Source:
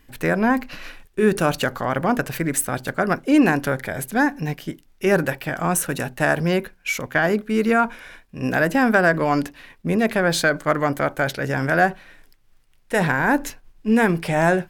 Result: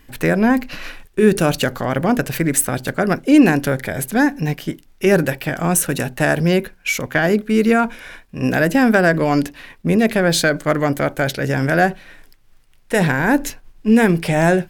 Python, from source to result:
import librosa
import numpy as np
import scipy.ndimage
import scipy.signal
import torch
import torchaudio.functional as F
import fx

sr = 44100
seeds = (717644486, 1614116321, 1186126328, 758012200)

y = fx.dynamic_eq(x, sr, hz=1100.0, q=0.97, threshold_db=-34.0, ratio=4.0, max_db=-7)
y = F.gain(torch.from_numpy(y), 5.5).numpy()